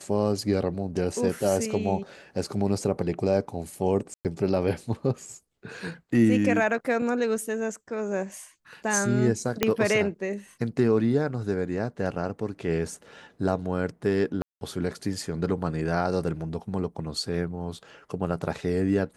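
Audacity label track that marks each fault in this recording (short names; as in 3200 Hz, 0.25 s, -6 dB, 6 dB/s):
4.140000	4.250000	gap 0.108 s
9.630000	9.630000	pop -6 dBFS
14.420000	14.610000	gap 0.191 s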